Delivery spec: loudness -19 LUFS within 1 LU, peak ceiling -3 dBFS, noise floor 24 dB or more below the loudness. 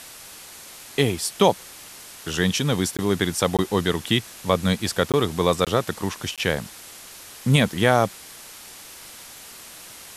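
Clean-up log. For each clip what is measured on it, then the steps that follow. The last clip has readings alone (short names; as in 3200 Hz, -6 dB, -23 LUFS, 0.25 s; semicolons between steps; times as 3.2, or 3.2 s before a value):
dropouts 5; longest dropout 17 ms; noise floor -43 dBFS; noise floor target -47 dBFS; loudness -22.5 LUFS; peak -4.0 dBFS; loudness target -19.0 LUFS
-> interpolate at 2.97/3.57/5.12/5.65/6.36, 17 ms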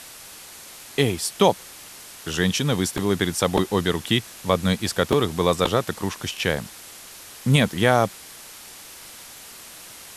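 dropouts 0; noise floor -43 dBFS; noise floor target -47 dBFS
-> noise print and reduce 6 dB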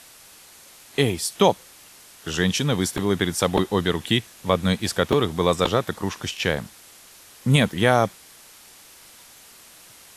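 noise floor -49 dBFS; loudness -22.5 LUFS; peak -4.0 dBFS; loudness target -19.0 LUFS
-> gain +3.5 dB; limiter -3 dBFS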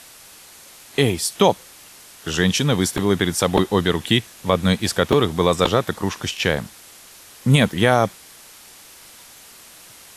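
loudness -19.5 LUFS; peak -3.0 dBFS; noise floor -45 dBFS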